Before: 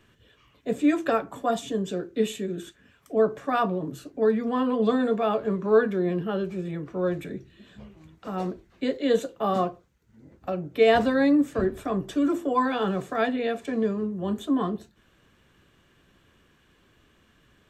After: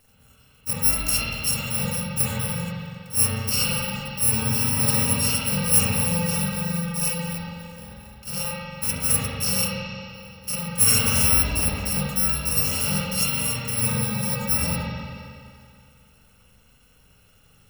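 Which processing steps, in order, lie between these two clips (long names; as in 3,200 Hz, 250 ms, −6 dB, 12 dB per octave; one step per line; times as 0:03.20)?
samples in bit-reversed order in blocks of 128 samples
spring reverb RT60 2.3 s, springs 41/47 ms, chirp 25 ms, DRR −7.5 dB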